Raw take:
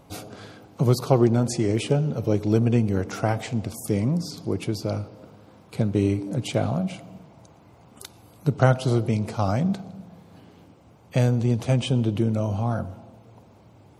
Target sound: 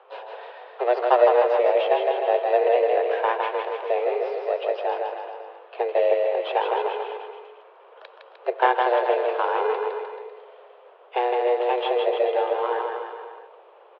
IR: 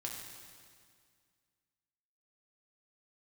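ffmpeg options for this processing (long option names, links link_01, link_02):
-filter_complex "[0:a]asplit=2[link_01][link_02];[link_02]acrusher=samples=22:mix=1:aa=0.000001,volume=-8.5dB[link_03];[link_01][link_03]amix=inputs=2:normalize=0,aecho=1:1:160|304|433.6|550.2|655.2:0.631|0.398|0.251|0.158|0.1,highpass=frequency=210:width_type=q:width=0.5412,highpass=frequency=210:width_type=q:width=1.307,lowpass=frequency=3100:width_type=q:width=0.5176,lowpass=frequency=3100:width_type=q:width=0.7071,lowpass=frequency=3100:width_type=q:width=1.932,afreqshift=240"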